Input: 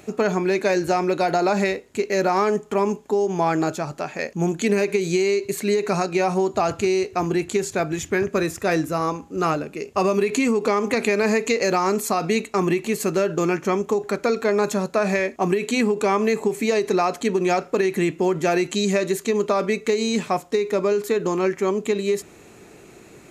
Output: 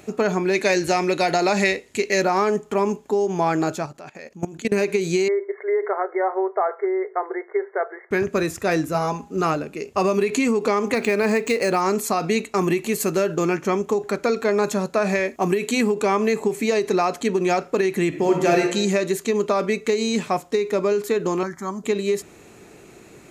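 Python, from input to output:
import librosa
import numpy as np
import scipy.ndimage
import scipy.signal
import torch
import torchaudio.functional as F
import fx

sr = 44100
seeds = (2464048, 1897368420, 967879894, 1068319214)

y = fx.spec_box(x, sr, start_s=0.54, length_s=1.7, low_hz=1700.0, high_hz=12000.0, gain_db=6)
y = fx.level_steps(y, sr, step_db=19, at=(3.86, 4.72))
y = fx.brickwall_bandpass(y, sr, low_hz=360.0, high_hz=2200.0, at=(5.28, 8.11))
y = fx.comb(y, sr, ms=4.8, depth=0.71, at=(8.94, 9.41))
y = fx.resample_linear(y, sr, factor=3, at=(10.94, 11.81))
y = fx.high_shelf(y, sr, hz=10000.0, db=8.5, at=(12.54, 13.35))
y = fx.high_shelf(y, sr, hz=12000.0, db=11.0, at=(15.26, 15.94))
y = fx.reverb_throw(y, sr, start_s=18.08, length_s=0.54, rt60_s=0.81, drr_db=1.5)
y = fx.fixed_phaser(y, sr, hz=1100.0, stages=4, at=(21.43, 21.84))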